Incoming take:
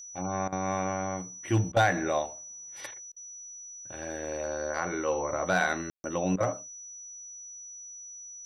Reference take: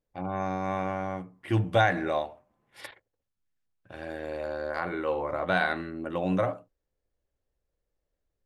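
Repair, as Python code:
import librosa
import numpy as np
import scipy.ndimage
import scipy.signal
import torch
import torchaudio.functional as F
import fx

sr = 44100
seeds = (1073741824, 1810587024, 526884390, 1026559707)

y = fx.fix_declip(x, sr, threshold_db=-15.0)
y = fx.notch(y, sr, hz=5900.0, q=30.0)
y = fx.fix_ambience(y, sr, seeds[0], print_start_s=3.01, print_end_s=3.51, start_s=5.9, end_s=6.04)
y = fx.fix_interpolate(y, sr, at_s=(0.48, 1.72, 3.12, 6.36), length_ms=43.0)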